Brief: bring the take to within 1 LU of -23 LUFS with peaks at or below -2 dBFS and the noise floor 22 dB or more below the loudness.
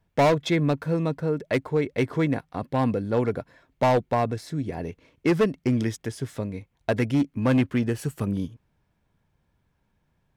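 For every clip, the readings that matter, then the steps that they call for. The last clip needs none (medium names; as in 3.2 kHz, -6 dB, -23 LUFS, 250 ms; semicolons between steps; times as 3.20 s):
clipped samples 1.6%; clipping level -15.5 dBFS; loudness -25.5 LUFS; peak level -15.5 dBFS; loudness target -23.0 LUFS
-> clip repair -15.5 dBFS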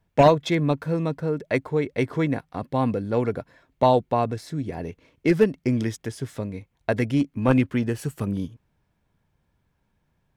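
clipped samples 0.0%; loudness -24.5 LUFS; peak level -6.5 dBFS; loudness target -23.0 LUFS
-> trim +1.5 dB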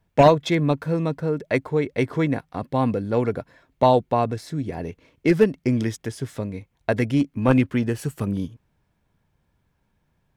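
loudness -23.0 LUFS; peak level -5.0 dBFS; noise floor -70 dBFS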